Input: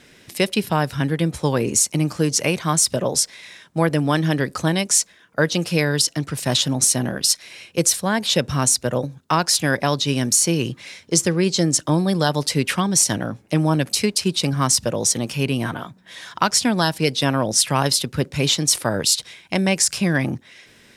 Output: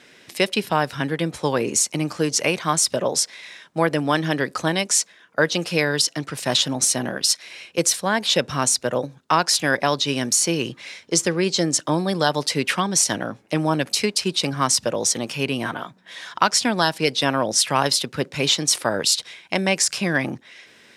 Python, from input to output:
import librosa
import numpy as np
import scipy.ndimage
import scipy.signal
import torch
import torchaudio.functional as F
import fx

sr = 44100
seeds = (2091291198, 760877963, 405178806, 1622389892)

y = fx.highpass(x, sr, hz=380.0, slope=6)
y = fx.high_shelf(y, sr, hz=8600.0, db=-10.0)
y = y * 10.0 ** (2.0 / 20.0)